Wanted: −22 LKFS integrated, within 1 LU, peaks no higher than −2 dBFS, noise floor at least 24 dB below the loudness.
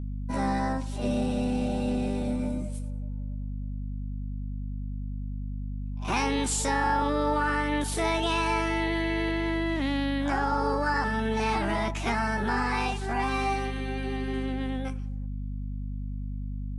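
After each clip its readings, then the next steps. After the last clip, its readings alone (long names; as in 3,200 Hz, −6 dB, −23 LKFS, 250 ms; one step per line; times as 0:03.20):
mains hum 50 Hz; hum harmonics up to 250 Hz; level of the hum −31 dBFS; integrated loudness −29.5 LKFS; sample peak −14.5 dBFS; target loudness −22.0 LKFS
→ mains-hum notches 50/100/150/200/250 Hz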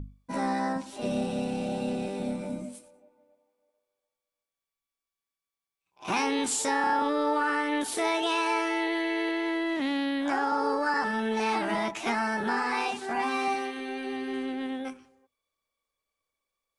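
mains hum none found; integrated loudness −29.0 LKFS; sample peak −14.0 dBFS; target loudness −22.0 LKFS
→ level +7 dB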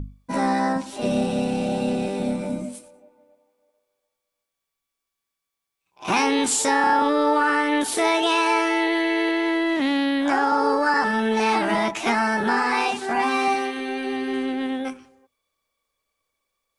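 integrated loudness −22.0 LKFS; sample peak −7.0 dBFS; background noise floor −83 dBFS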